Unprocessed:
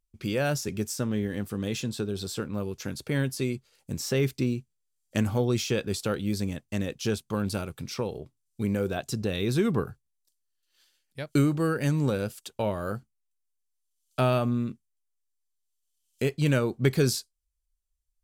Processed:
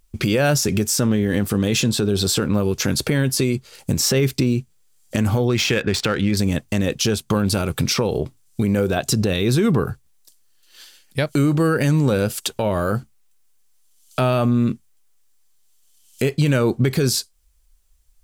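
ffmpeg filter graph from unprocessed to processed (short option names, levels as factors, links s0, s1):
-filter_complex "[0:a]asettb=1/sr,asplit=3[s0][s1][s2];[s0]atrim=end=5.494[s3];[s1]atrim=start=5.49:end=6.37,asetpts=PTS-STARTPTS,afade=t=in:d=0.004:c=qsin,afade=t=out:st=0.876:d=0.004:c=qsin,equalizer=f=1900:t=o:w=1.1:g=9,adynamicsmooth=sensitivity=7:basefreq=3000[s4];[s2]atrim=start=6.366[s5];[s3][s4]acrossfade=d=0.004:c1=hsin:c2=qsin[s6];[s6][s5]acrossfade=d=0.004:c1=qsin:c2=hsin,acompressor=threshold=0.0158:ratio=3,alimiter=level_in=31.6:limit=0.891:release=50:level=0:latency=1,volume=0.355"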